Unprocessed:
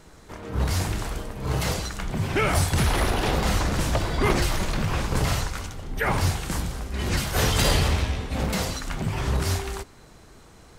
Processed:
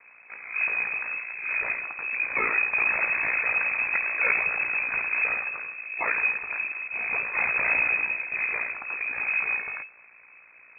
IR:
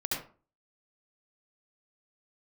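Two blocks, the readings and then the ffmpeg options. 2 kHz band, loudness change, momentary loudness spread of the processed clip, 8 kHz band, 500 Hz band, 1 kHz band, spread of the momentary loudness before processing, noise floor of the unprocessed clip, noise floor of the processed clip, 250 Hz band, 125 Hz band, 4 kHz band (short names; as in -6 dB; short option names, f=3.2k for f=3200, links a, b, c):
+8.5 dB, +0.5 dB, 9 LU, under -40 dB, -12.0 dB, -5.5 dB, 10 LU, -50 dBFS, -53 dBFS, -21.0 dB, under -30 dB, under -40 dB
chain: -af "aeval=exprs='val(0)*sin(2*PI*29*n/s)':c=same,lowpass=f=2.2k:t=q:w=0.5098,lowpass=f=2.2k:t=q:w=0.6013,lowpass=f=2.2k:t=q:w=0.9,lowpass=f=2.2k:t=q:w=2.563,afreqshift=-2600"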